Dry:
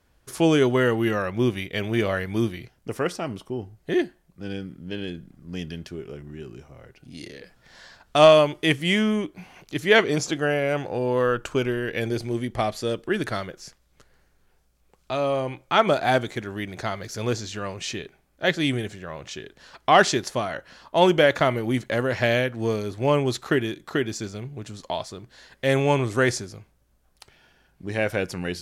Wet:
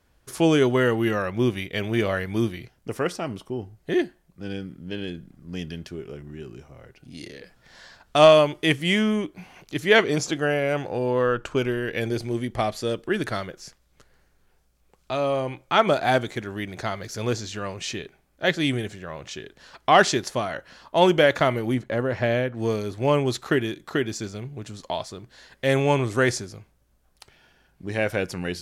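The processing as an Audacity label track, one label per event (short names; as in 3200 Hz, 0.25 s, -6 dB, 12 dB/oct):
11.110000	11.570000	high shelf 7400 Hz -10 dB
21.740000	22.570000	high shelf 2200 Hz -11 dB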